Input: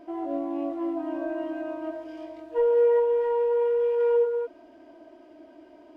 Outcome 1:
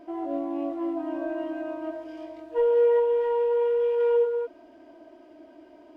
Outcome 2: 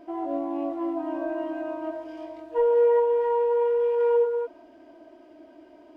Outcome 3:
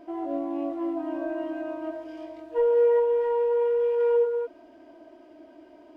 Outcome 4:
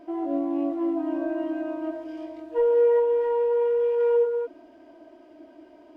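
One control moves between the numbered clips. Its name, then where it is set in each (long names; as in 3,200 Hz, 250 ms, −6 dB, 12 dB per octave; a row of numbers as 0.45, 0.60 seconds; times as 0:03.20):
dynamic equaliser, frequency: 3,200, 890, 8,400, 290 Hertz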